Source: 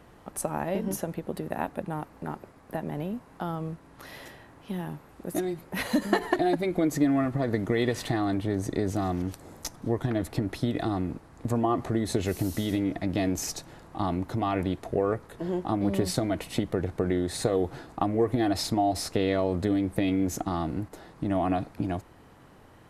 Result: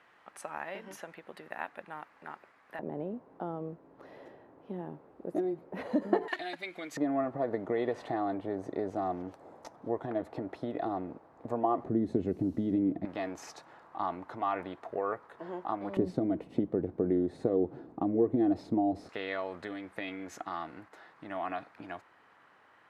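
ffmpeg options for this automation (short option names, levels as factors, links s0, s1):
-af "asetnsamples=n=441:p=0,asendcmd='2.79 bandpass f 460;6.28 bandpass f 2600;6.97 bandpass f 680;11.84 bandpass f 270;13.05 bandpass f 1100;15.97 bandpass f 310;19.09 bandpass f 1600',bandpass=f=1900:t=q:w=1.2:csg=0"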